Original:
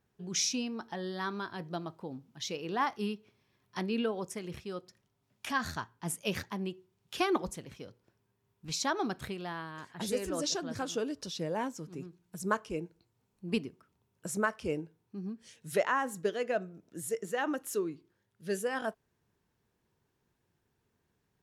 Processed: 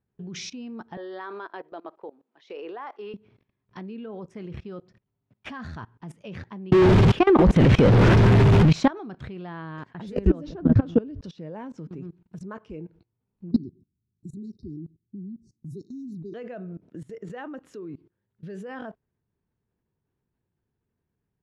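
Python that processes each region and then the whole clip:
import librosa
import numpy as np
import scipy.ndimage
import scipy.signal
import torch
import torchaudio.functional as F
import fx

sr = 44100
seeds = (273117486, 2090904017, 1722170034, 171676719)

y = fx.chain(x, sr, fx.highpass(hz=400.0, slope=24),
    fx.high_shelf(hz=4500.0, db=-10.0), at=(0.97, 3.14))
y = fx.chain(y, sr, fx.zero_step(step_db=-38.5),
    fx.dynamic_eq(hz=4800.0, q=1.4, threshold_db=-49.0, ratio=4.0, max_db=-5),
    fx.env_flatten(amount_pct=100), at=(6.72, 8.91))
y = fx.chain(y, sr, fx.riaa(side='playback'),
    fx.band_squash(depth_pct=100), at=(10.17, 11.21))
y = fx.chain(y, sr, fx.env_phaser(low_hz=530.0, high_hz=2400.0, full_db=-27.0),
    fx.brickwall_bandstop(low_hz=410.0, high_hz=3700.0), at=(13.51, 16.34))
y = scipy.signal.sosfilt(scipy.signal.butter(2, 2900.0, 'lowpass', fs=sr, output='sos'), y)
y = fx.low_shelf(y, sr, hz=380.0, db=9.5)
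y = fx.level_steps(y, sr, step_db=22)
y = y * librosa.db_to_amplitude(7.5)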